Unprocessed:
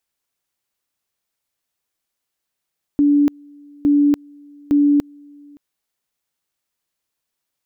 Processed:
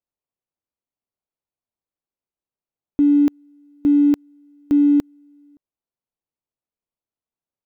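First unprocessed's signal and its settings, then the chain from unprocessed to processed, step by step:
two-level tone 289 Hz -10.5 dBFS, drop 29.5 dB, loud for 0.29 s, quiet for 0.57 s, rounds 3
median filter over 25 samples; upward expander 1.5:1, over -28 dBFS

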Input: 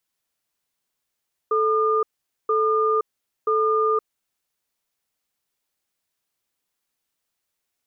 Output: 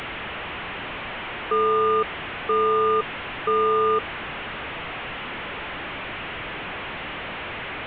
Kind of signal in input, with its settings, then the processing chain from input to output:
cadence 437 Hz, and 1210 Hz, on 0.52 s, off 0.46 s, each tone -20 dBFS 2.85 s
delta modulation 16 kbps, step -25.5 dBFS

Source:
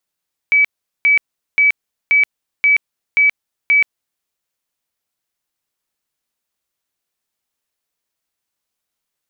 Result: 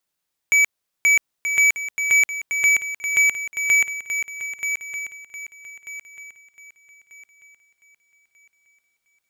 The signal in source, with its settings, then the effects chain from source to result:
tone bursts 2290 Hz, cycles 289, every 0.53 s, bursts 7, -8.5 dBFS
wavefolder -11.5 dBFS; on a send: swung echo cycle 1.24 s, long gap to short 3:1, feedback 30%, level -8 dB

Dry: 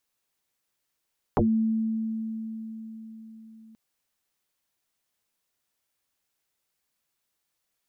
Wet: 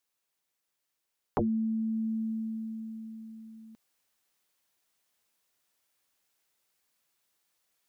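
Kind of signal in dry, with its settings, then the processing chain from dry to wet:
FM tone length 2.38 s, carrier 222 Hz, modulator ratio 0.56, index 9.1, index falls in 0.15 s exponential, decay 4.73 s, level -18 dB
low shelf 180 Hz -6.5 dB; vocal rider within 3 dB 0.5 s

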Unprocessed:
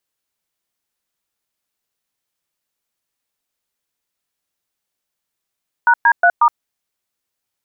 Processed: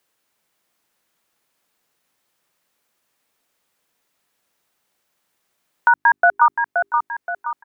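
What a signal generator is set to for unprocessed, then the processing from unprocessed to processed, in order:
DTMF "#D3*", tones 68 ms, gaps 0.113 s, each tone -10.5 dBFS
notches 50/100/150/200/250/300/350/400 Hz; on a send: feedback echo 0.524 s, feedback 32%, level -8 dB; on the sum: three-band squash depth 40%

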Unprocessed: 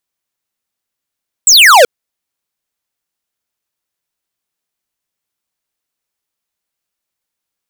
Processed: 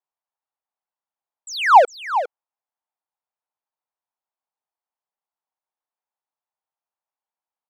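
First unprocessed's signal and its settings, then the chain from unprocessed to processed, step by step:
laser zap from 8200 Hz, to 450 Hz, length 0.38 s square, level -4 dB
band-pass 850 Hz, Q 3.1; on a send: echo 0.406 s -11 dB

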